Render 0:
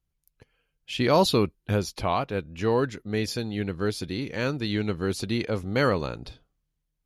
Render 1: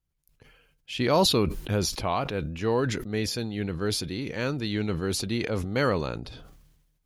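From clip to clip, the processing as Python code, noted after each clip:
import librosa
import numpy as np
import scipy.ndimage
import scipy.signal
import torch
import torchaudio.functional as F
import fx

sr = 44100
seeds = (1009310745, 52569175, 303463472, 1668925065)

y = fx.sustainer(x, sr, db_per_s=47.0)
y = y * 10.0 ** (-2.0 / 20.0)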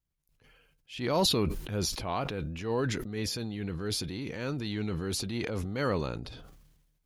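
y = fx.transient(x, sr, attack_db=-8, sustain_db=4)
y = y * 10.0 ** (-4.0 / 20.0)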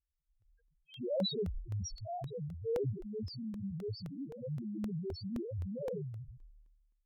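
y = fx.spec_topn(x, sr, count=1)
y = fx.buffer_crackle(y, sr, first_s=0.42, period_s=0.26, block=64, kind='repeat')
y = y * 10.0 ** (3.0 / 20.0)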